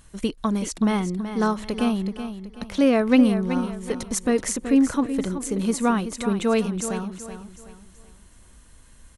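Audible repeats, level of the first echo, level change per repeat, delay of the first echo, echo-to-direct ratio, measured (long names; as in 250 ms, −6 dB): 3, −10.0 dB, −9.0 dB, 377 ms, −9.5 dB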